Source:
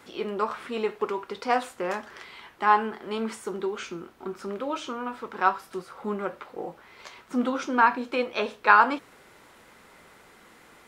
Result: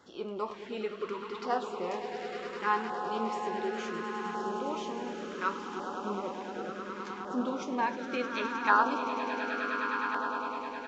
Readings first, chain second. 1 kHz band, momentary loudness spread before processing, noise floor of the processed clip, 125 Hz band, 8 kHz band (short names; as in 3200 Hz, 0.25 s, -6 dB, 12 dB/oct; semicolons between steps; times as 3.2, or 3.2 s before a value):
-5.5 dB, 17 LU, -43 dBFS, -3.5 dB, -5.0 dB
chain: swelling echo 0.103 s, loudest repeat 8, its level -11 dB; downsampling 16000 Hz; LFO notch saw down 0.69 Hz 540–2500 Hz; gain -6.5 dB